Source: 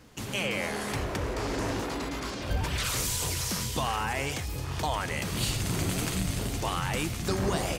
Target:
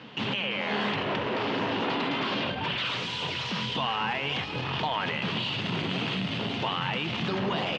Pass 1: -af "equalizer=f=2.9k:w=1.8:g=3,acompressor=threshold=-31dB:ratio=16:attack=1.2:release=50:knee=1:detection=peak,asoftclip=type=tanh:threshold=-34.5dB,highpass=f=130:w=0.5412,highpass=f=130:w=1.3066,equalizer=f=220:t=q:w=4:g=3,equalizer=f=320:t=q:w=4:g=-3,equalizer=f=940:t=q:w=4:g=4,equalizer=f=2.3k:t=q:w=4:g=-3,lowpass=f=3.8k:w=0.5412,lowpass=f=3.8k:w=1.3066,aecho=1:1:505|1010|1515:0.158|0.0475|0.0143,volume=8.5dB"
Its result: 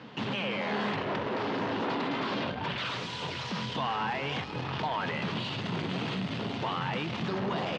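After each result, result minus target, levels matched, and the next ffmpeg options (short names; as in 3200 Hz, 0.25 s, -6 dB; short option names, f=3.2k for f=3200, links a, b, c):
soft clip: distortion +13 dB; 4000 Hz band -3.5 dB
-af "equalizer=f=2.9k:w=1.8:g=3,acompressor=threshold=-31dB:ratio=16:attack=1.2:release=50:knee=1:detection=peak,asoftclip=type=tanh:threshold=-24.5dB,highpass=f=130:w=0.5412,highpass=f=130:w=1.3066,equalizer=f=220:t=q:w=4:g=3,equalizer=f=320:t=q:w=4:g=-3,equalizer=f=940:t=q:w=4:g=4,equalizer=f=2.3k:t=q:w=4:g=-3,lowpass=f=3.8k:w=0.5412,lowpass=f=3.8k:w=1.3066,aecho=1:1:505|1010|1515:0.158|0.0475|0.0143,volume=8.5dB"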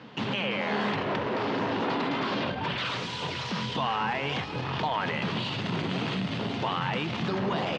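4000 Hz band -3.0 dB
-af "equalizer=f=2.9k:w=1.8:g=10,acompressor=threshold=-31dB:ratio=16:attack=1.2:release=50:knee=1:detection=peak,asoftclip=type=tanh:threshold=-24.5dB,highpass=f=130:w=0.5412,highpass=f=130:w=1.3066,equalizer=f=220:t=q:w=4:g=3,equalizer=f=320:t=q:w=4:g=-3,equalizer=f=940:t=q:w=4:g=4,equalizer=f=2.3k:t=q:w=4:g=-3,lowpass=f=3.8k:w=0.5412,lowpass=f=3.8k:w=1.3066,aecho=1:1:505|1010|1515:0.158|0.0475|0.0143,volume=8.5dB"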